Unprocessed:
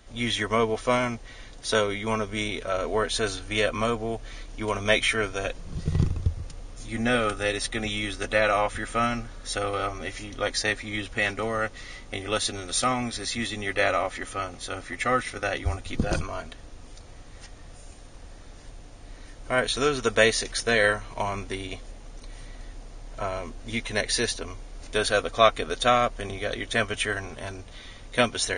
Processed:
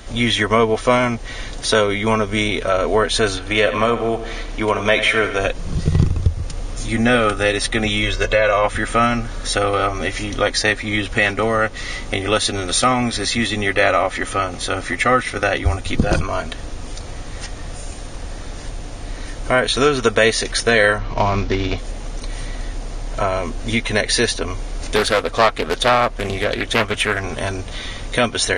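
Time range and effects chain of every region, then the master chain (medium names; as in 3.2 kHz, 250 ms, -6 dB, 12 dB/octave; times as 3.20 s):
3.38–5.40 s: tone controls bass -5 dB, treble -6 dB + feedback delay 85 ms, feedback 51%, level -13 dB
8.03–8.64 s: steep low-pass 8.1 kHz 48 dB/octave + comb 1.9 ms, depth 71% + compression 2:1, threshold -23 dBFS
20.98–21.78 s: CVSD coder 32 kbps + bass shelf 430 Hz +5 dB + tape noise reduction on one side only decoder only
24.96–27.24 s: valve stage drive 9 dB, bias 0.4 + loudspeaker Doppler distortion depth 0.5 ms
whole clip: dynamic bell 7.3 kHz, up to -4 dB, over -44 dBFS, Q 0.72; compression 1.5:1, threshold -39 dBFS; loudness maximiser +16.5 dB; trim -1 dB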